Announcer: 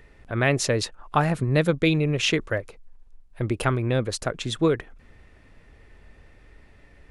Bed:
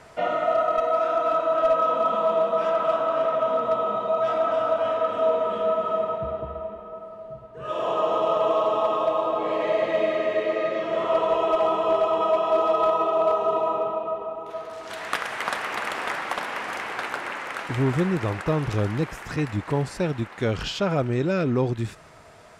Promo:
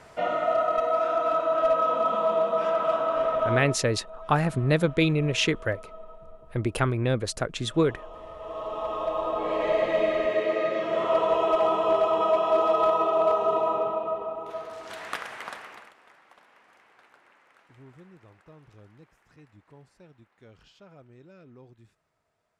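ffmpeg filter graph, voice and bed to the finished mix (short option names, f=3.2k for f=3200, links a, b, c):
-filter_complex "[0:a]adelay=3150,volume=-1.5dB[a];[1:a]volume=17.5dB,afade=t=out:st=3.51:d=0.26:silence=0.11885,afade=t=in:st=8.37:d=1.33:silence=0.105925,afade=t=out:st=14.43:d=1.51:silence=0.0446684[b];[a][b]amix=inputs=2:normalize=0"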